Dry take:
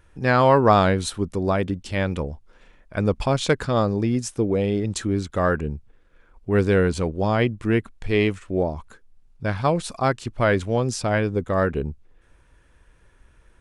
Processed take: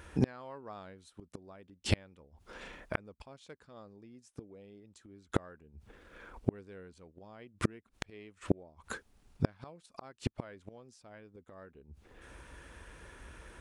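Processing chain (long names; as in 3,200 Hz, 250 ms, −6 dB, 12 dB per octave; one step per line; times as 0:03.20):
high-pass filter 58 Hz 12 dB per octave
parametric band 120 Hz −6.5 dB 0.76 octaves
gate with flip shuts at −22 dBFS, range −39 dB
level +8.5 dB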